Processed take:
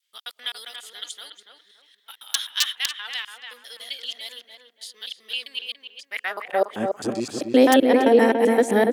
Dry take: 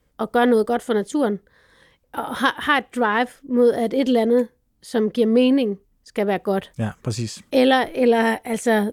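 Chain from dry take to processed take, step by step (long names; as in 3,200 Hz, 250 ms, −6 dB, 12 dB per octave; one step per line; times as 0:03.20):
reversed piece by piece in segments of 130 ms
wrap-around overflow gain 6.5 dB
high-pass filter sweep 3,300 Hz → 300 Hz, 0:05.99–0:06.81
on a send: feedback echo with a low-pass in the loop 285 ms, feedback 34%, low-pass 1,900 Hz, level −4.5 dB
on the sum: level −2 dB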